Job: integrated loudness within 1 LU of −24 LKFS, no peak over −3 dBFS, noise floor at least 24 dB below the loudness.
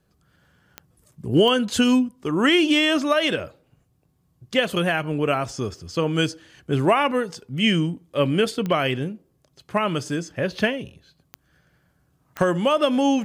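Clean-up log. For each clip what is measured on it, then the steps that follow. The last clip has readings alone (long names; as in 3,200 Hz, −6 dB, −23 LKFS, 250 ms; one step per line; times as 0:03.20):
number of clicks 5; integrated loudness −22.0 LKFS; sample peak −8.0 dBFS; target loudness −24.0 LKFS
→ click removal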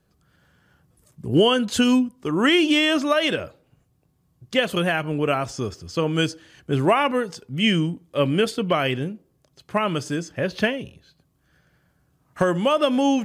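number of clicks 0; integrated loudness −22.0 LKFS; sample peak −8.0 dBFS; target loudness −24.0 LKFS
→ level −2 dB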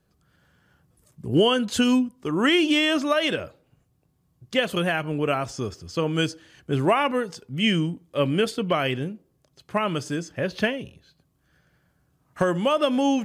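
integrated loudness −24.0 LKFS; sample peak −10.0 dBFS; background noise floor −68 dBFS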